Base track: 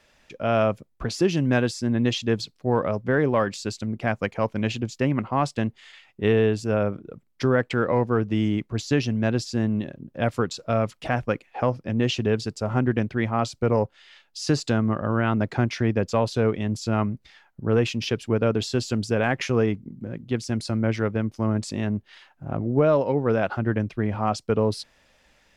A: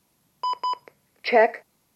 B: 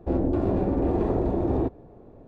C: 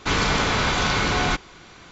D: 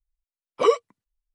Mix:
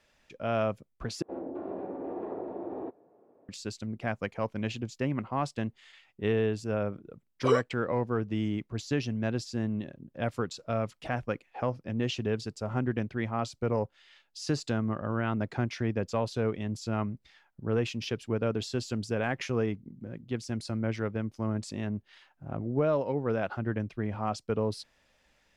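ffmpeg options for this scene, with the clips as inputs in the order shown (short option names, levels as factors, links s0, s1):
-filter_complex "[0:a]volume=0.422[s0];[2:a]highpass=350,lowpass=2000[s1];[s0]asplit=2[s2][s3];[s2]atrim=end=1.224[s4];[s1]atrim=end=2.27,asetpts=PTS-STARTPTS,volume=0.355[s5];[s3]atrim=start=3.486[s6];[4:a]atrim=end=1.34,asetpts=PTS-STARTPTS,volume=0.422,afade=t=in:d=0.004:c=hsin,afade=t=out:st=1.336:d=0.004:c=hsin,adelay=6840[s7];[s4][s5]acrossfade=d=0.004:c1=hsin:c2=hsin[s8];[s8][s6]acrossfade=d=0.004:c1=hsin:c2=hsin[s9];[s9][s7]amix=inputs=2:normalize=0"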